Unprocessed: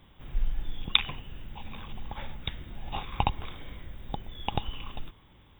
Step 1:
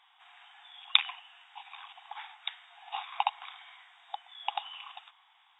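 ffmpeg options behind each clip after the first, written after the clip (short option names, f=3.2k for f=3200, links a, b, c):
-af "afftfilt=real='re*between(b*sr/4096,680,8600)':imag='im*between(b*sr/4096,680,8600)':win_size=4096:overlap=0.75"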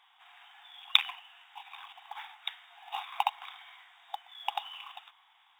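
-af "acrusher=bits=6:mode=log:mix=0:aa=0.000001"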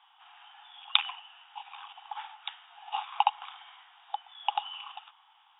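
-af "highpass=350,equalizer=f=380:t=q:w=4:g=-7,equalizer=f=530:t=q:w=4:g=-10,equalizer=f=850:t=q:w=4:g=8,equalizer=f=1.3k:t=q:w=4:g=5,equalizer=f=2.1k:t=q:w=4:g=-6,equalizer=f=3k:t=q:w=4:g=7,lowpass=f=3.4k:w=0.5412,lowpass=f=3.4k:w=1.3066,volume=-1dB"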